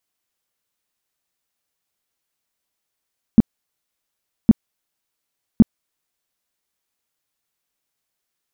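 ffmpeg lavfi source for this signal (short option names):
-f lavfi -i "aevalsrc='0.668*sin(2*PI*223*mod(t,1.11))*lt(mod(t,1.11),5/223)':d=3.33:s=44100"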